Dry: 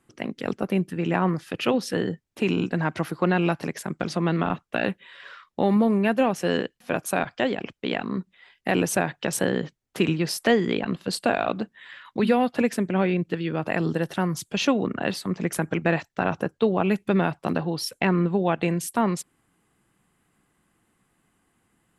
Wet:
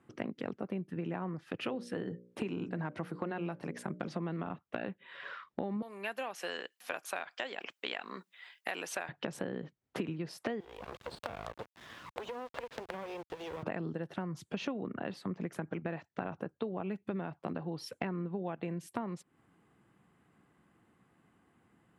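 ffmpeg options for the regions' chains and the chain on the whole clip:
ffmpeg -i in.wav -filter_complex "[0:a]asettb=1/sr,asplit=3[link_01][link_02][link_03];[link_01]atrim=end=1.594[link_04];[link_02]atrim=start=1.59:end=4.09,asetpts=PTS-STARTPTS,afade=type=in:duration=0.004:curve=qsin,afade=type=out:start_time=2.496:duration=0.004:curve=qsin,equalizer=frequency=9200:width_type=o:width=0.38:gain=8,bandreject=frequency=60:width_type=h:width=6,bandreject=frequency=120:width_type=h:width=6,bandreject=frequency=180:width_type=h:width=6,bandreject=frequency=240:width_type=h:width=6,bandreject=frequency=300:width_type=h:width=6,bandreject=frequency=360:width_type=h:width=6,bandreject=frequency=420:width_type=h:width=6,bandreject=frequency=480:width_type=h:width=6,bandreject=frequency=540:width_type=h:width=6,bandreject=frequency=600:width_type=h:width=6[link_05];[link_03]atrim=start=4.086[link_06];[link_04][link_05]acrossfade=duration=0.004:curve1=hsin:curve2=qsin[link_07];[link_07][link_06]acrossfade=duration=0.004:curve1=qsin:curve2=hsin,asettb=1/sr,asplit=3[link_08][link_09][link_10];[link_08]atrim=end=5.824[link_11];[link_09]atrim=start=5.82:end=9.09,asetpts=PTS-STARTPTS,afade=type=in:duration=0.004:curve=qsin,afade=type=out:start_time=3.266:duration=0.004:curve=qsin,aemphasis=mode=production:type=riaa,acrossover=split=4900[link_12][link_13];[link_13]acompressor=threshold=-30dB:ratio=4:attack=1:release=60[link_14];[link_12][link_14]amix=inputs=2:normalize=0,highpass=frequency=1000:poles=1[link_15];[link_10]atrim=start=9.086[link_16];[link_11][link_15]acrossfade=duration=0.004:curve1=hsin:curve2=qsin[link_17];[link_17][link_16]acrossfade=duration=0.004:curve1=qsin:curve2=hsin,asettb=1/sr,asplit=3[link_18][link_19][link_20];[link_18]atrim=end=10.604[link_21];[link_19]atrim=start=10.6:end=13.63,asetpts=PTS-STARTPTS,afade=type=in:duration=0.004:curve=qsin,afade=type=out:start_time=3.026:duration=0.004:curve=qsin,highpass=frequency=440:width=0.5412,highpass=frequency=440:width=1.3066,equalizer=frequency=510:width_type=q:width=4:gain=6,equalizer=frequency=1100:width_type=q:width=4:gain=7,equalizer=frequency=1900:width_type=q:width=4:gain=-6,equalizer=frequency=3500:width_type=q:width=4:gain=6,lowpass=frequency=4600:width=0.5412,lowpass=frequency=4600:width=1.3066,acompressor=threshold=-32dB:ratio=6:attack=3.2:release=140:knee=1:detection=peak,acrusher=bits=5:dc=4:mix=0:aa=0.000001[link_22];[link_20]atrim=start=13.626[link_23];[link_21][link_22]acrossfade=duration=0.004:curve1=hsin:curve2=qsin[link_24];[link_24][link_23]acrossfade=duration=0.004:curve1=qsin:curve2=hsin,lowpass=frequency=1600:poles=1,acompressor=threshold=-36dB:ratio=10,highpass=77,volume=2dB" out.wav

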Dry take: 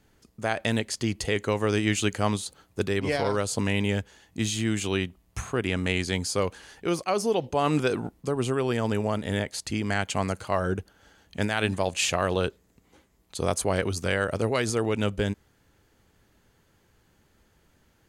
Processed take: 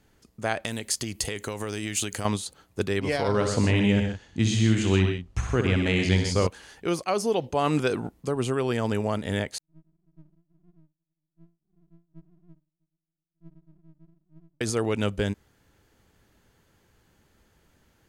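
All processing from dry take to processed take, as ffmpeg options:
ffmpeg -i in.wav -filter_complex "[0:a]asettb=1/sr,asplit=3[link_01][link_02][link_03];[link_01]atrim=end=0.654[link_04];[link_02]atrim=start=0.65:end=2.25,asetpts=PTS-STARTPTS,afade=type=in:duration=0.004:curve=qsin,afade=type=out:start_time=1.596:duration=0.004:curve=qsin,acompressor=threshold=-27dB:ratio=10:attack=3.2:release=140:knee=1:detection=peak,aemphasis=mode=production:type=50kf[link_05];[link_03]atrim=start=2.246[link_06];[link_04][link_05]acrossfade=duration=0.004:curve1=hsin:curve2=qsin[link_07];[link_07][link_06]acrossfade=duration=0.004:curve1=qsin:curve2=hsin,asettb=1/sr,asplit=3[link_08][link_09][link_10];[link_08]atrim=end=3.284[link_11];[link_09]atrim=start=3.28:end=6.47,asetpts=PTS-STARTPTS,afade=type=in:duration=0.004:curve=qsin,afade=type=out:start_time=3.186:duration=0.004:curve=qsin,lowpass=6500,lowshelf=frequency=190:gain=8.5,aecho=1:1:63|124|158:0.447|0.447|0.251,atrim=end_sample=140679[link_12];[link_10]atrim=start=6.466[link_13];[link_11][link_12]acrossfade=duration=0.004:curve1=hsin:curve2=qsin[link_14];[link_14][link_13]acrossfade=duration=0.004:curve1=qsin:curve2=hsin,asettb=1/sr,asplit=3[link_15][link_16][link_17];[link_15]atrim=end=9.584[link_18];[link_16]atrim=start=9.58:end=14.61,asetpts=PTS-STARTPTS,afade=type=in:duration=0.004:curve=qsin,afade=type=out:start_time=5.026:duration=0.004:curve=qsin,asuperpass=centerf=160:order=8:qfactor=7.9,aeval=exprs='max(val(0),0)':channel_layout=same[link_19];[link_17]atrim=start=14.606[link_20];[link_18][link_19]acrossfade=duration=0.004:curve1=hsin:curve2=qsin[link_21];[link_21][link_20]acrossfade=duration=0.004:curve1=qsin:curve2=hsin" out.wav

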